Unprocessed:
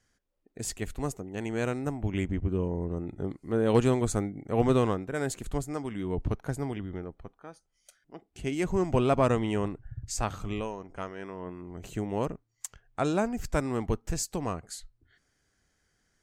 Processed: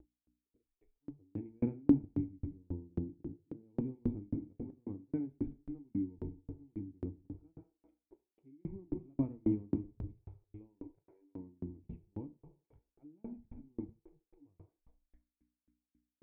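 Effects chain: FFT filter 150 Hz 0 dB, 840 Hz -15 dB, 2.6 kHz +7 dB; level rider gain up to 12.5 dB; hum 60 Hz, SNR 18 dB; cascade formant filter u; slow attack 786 ms; reverberation RT60 1.8 s, pre-delay 5 ms, DRR 2.5 dB; spectral noise reduction 27 dB; sawtooth tremolo in dB decaying 3.7 Hz, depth 40 dB; trim +6 dB

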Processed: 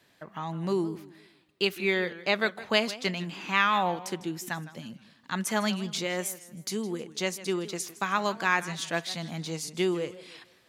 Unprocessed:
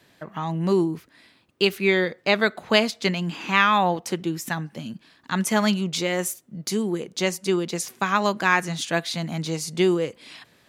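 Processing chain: bass shelf 480 Hz -3.5 dB; modulated delay 157 ms, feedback 35%, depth 169 cents, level -16.5 dB; trim -5 dB

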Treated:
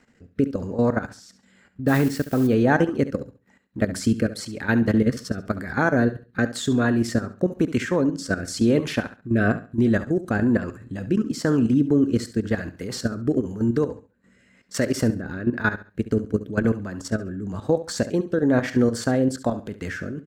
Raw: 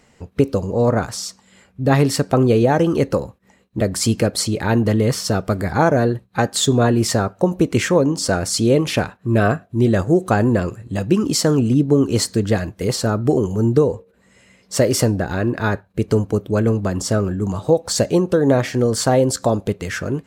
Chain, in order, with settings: 1.87–2.46 s: added noise blue -29 dBFS; fifteen-band graphic EQ 250 Hz +8 dB, 1.6 kHz +10 dB, 10 kHz -3 dB; level held to a coarse grid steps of 13 dB; rotary cabinet horn 1 Hz; feedback delay 69 ms, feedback 27%, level -14 dB; trim -3.5 dB

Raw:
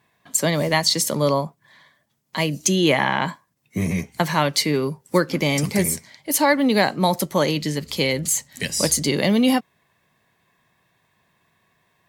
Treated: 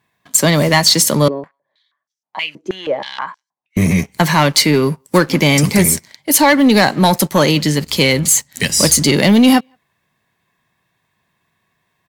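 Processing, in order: peaking EQ 540 Hz -3 dB 1 oct; speakerphone echo 170 ms, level -30 dB; waveshaping leveller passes 2; 1.28–3.77 s: step-sequenced band-pass 6.3 Hz 370–5700 Hz; trim +2.5 dB

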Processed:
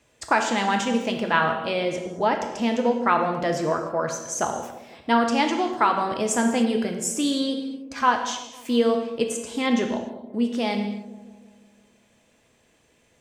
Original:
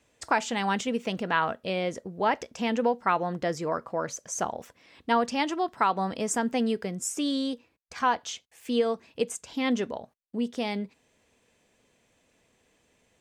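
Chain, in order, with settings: 1.85–2.95 s: peaking EQ 1.7 kHz -4.5 dB 1.7 oct; on a send: feedback echo behind a low-pass 167 ms, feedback 58%, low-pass 640 Hz, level -12.5 dB; on the sum: gated-style reverb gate 320 ms falling, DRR 3.5 dB; trim +3.5 dB

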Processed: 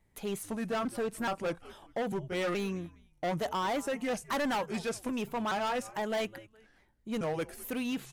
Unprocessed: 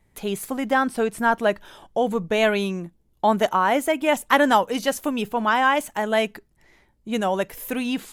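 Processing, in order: pitch shift switched off and on -3 st, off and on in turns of 424 ms; frequency-shifting echo 205 ms, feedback 31%, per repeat -110 Hz, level -23 dB; hard clipper -21 dBFS, distortion -7 dB; trim -7.5 dB

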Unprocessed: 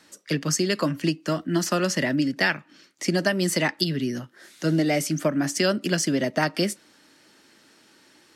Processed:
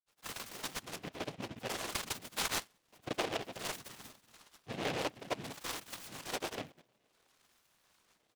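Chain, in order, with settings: bass shelf 230 Hz +5.5 dB; on a send: feedback echo behind a high-pass 827 ms, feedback 53%, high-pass 3.2 kHz, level -20.5 dB; on the sum: LFO band-pass sine 0.55 Hz 510–2500 Hz; granulator; noise-vocoded speech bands 4; band-stop 890 Hz, Q 12; delay time shaken by noise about 2 kHz, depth 0.16 ms; trim -7 dB

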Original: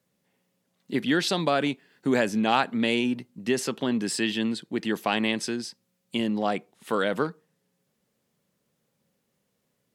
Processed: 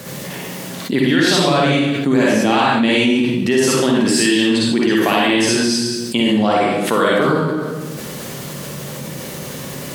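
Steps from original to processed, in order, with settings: in parallel at +3 dB: peak limiter -14.5 dBFS, peak gain reduction 7.5 dB; on the sum: reverberation RT60 0.70 s, pre-delay 44 ms, DRR -5 dB; level flattener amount 70%; trim -6.5 dB

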